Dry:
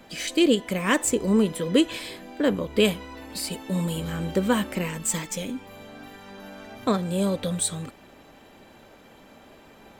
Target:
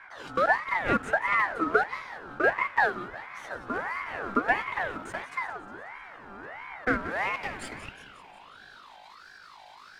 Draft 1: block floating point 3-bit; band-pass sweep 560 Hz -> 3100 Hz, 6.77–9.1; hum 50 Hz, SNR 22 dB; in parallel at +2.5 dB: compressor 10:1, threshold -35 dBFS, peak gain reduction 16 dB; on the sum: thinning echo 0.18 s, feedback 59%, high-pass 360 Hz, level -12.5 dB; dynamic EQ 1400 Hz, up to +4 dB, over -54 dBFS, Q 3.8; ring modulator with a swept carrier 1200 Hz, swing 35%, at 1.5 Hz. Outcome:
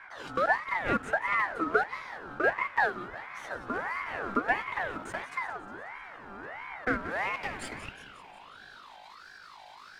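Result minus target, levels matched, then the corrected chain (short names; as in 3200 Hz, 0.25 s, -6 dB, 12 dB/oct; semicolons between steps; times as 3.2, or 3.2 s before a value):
compressor: peak gain reduction +8 dB
block floating point 3-bit; band-pass sweep 560 Hz -> 3100 Hz, 6.77–9.1; hum 50 Hz, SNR 22 dB; in parallel at +2.5 dB: compressor 10:1, threshold -26 dBFS, peak gain reduction 8 dB; on the sum: thinning echo 0.18 s, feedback 59%, high-pass 360 Hz, level -12.5 dB; dynamic EQ 1400 Hz, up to +4 dB, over -54 dBFS, Q 3.8; ring modulator with a swept carrier 1200 Hz, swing 35%, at 1.5 Hz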